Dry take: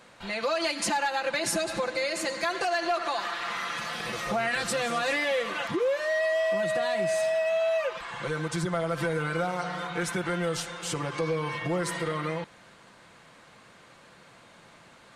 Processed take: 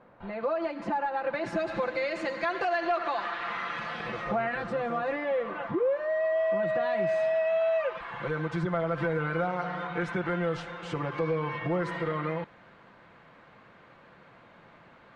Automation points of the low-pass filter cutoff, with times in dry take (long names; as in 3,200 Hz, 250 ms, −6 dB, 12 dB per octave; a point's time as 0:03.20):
0:01.05 1,100 Hz
0:01.82 2,400 Hz
0:03.98 2,400 Hz
0:04.77 1,200 Hz
0:06.12 1,200 Hz
0:07.04 2,200 Hz